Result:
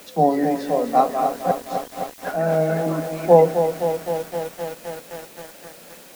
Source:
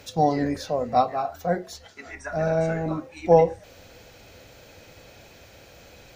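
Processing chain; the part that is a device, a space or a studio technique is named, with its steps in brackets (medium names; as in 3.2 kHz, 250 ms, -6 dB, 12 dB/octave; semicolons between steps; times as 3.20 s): steep high-pass 160 Hz 96 dB/octave; cassette deck with a dirty head (tape spacing loss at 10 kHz 23 dB; wow and flutter; white noise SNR 24 dB); 1.51–2.22 s: steep high-pass 3 kHz; bit-crushed delay 258 ms, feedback 80%, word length 7-bit, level -8 dB; trim +5 dB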